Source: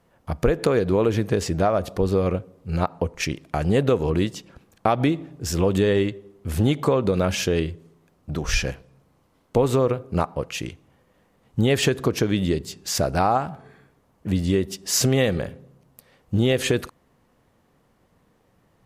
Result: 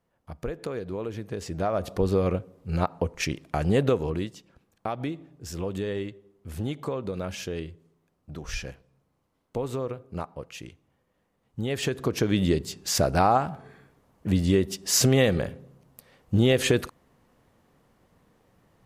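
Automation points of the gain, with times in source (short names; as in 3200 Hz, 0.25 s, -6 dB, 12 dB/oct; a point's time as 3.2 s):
1.27 s -13 dB
1.92 s -2.5 dB
3.87 s -2.5 dB
4.36 s -11 dB
11.59 s -11 dB
12.41 s -0.5 dB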